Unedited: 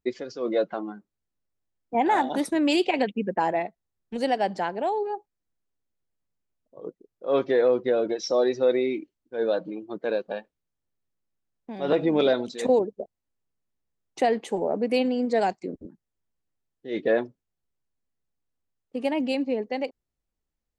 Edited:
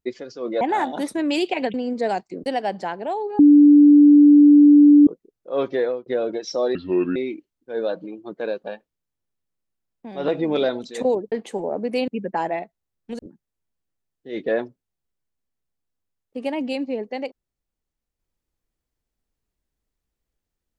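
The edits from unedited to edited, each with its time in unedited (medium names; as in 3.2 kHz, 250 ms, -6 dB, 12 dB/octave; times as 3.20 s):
0.61–1.98 s: delete
3.11–4.22 s: swap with 15.06–15.78 s
5.15–6.83 s: bleep 292 Hz -7 dBFS
7.57–7.82 s: fade out
8.51–8.80 s: speed 71%
12.96–14.30 s: delete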